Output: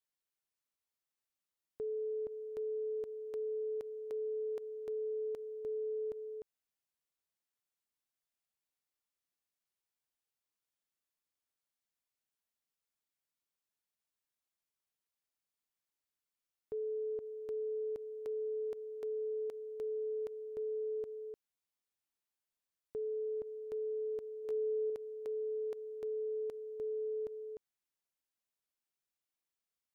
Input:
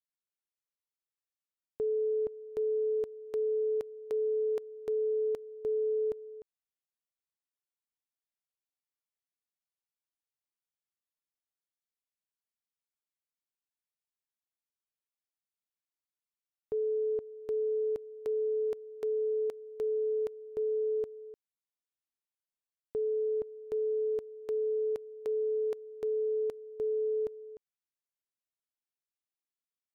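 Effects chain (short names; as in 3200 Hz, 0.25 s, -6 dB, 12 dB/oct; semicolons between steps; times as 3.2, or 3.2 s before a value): limiter -36 dBFS, peak gain reduction 9 dB; 24.43–24.9 doubler 16 ms -6.5 dB; gain +1.5 dB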